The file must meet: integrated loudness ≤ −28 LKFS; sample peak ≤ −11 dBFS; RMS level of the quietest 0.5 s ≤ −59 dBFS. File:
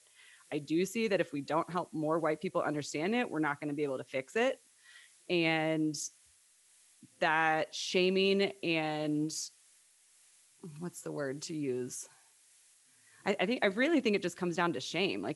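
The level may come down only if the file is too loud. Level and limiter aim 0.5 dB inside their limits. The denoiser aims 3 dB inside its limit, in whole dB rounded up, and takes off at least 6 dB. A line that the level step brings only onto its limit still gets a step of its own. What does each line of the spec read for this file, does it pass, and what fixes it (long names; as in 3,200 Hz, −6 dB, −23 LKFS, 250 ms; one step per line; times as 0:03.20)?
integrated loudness −33.0 LKFS: in spec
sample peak −15.0 dBFS: in spec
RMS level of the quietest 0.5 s −66 dBFS: in spec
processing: no processing needed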